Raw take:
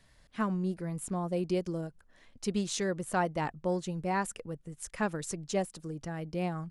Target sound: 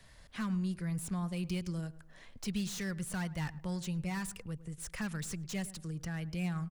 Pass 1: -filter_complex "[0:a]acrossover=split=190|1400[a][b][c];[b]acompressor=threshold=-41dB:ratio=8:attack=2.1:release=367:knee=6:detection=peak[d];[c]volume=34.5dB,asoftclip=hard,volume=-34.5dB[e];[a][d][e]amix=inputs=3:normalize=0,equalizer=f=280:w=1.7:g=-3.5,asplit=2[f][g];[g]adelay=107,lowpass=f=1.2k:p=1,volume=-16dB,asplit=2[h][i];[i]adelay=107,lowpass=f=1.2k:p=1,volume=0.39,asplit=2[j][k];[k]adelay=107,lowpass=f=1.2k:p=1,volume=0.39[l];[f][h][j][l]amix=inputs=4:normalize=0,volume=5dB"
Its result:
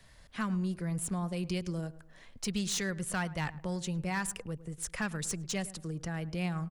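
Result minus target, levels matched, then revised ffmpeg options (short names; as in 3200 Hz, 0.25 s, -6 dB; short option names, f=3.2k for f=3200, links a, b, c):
compressor: peak gain reduction -8.5 dB; overloaded stage: distortion -9 dB
-filter_complex "[0:a]acrossover=split=190|1400[a][b][c];[b]acompressor=threshold=-50.5dB:ratio=8:attack=2.1:release=367:knee=6:detection=peak[d];[c]volume=46dB,asoftclip=hard,volume=-46dB[e];[a][d][e]amix=inputs=3:normalize=0,equalizer=f=280:w=1.7:g=-3.5,asplit=2[f][g];[g]adelay=107,lowpass=f=1.2k:p=1,volume=-16dB,asplit=2[h][i];[i]adelay=107,lowpass=f=1.2k:p=1,volume=0.39,asplit=2[j][k];[k]adelay=107,lowpass=f=1.2k:p=1,volume=0.39[l];[f][h][j][l]amix=inputs=4:normalize=0,volume=5dB"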